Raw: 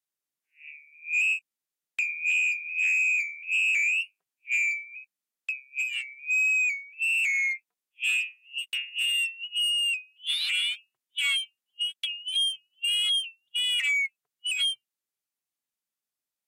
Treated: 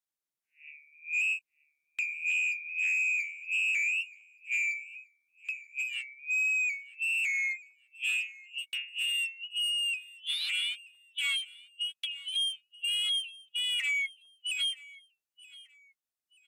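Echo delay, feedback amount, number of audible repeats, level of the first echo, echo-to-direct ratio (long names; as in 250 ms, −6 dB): 929 ms, 32%, 2, −21.0 dB, −20.5 dB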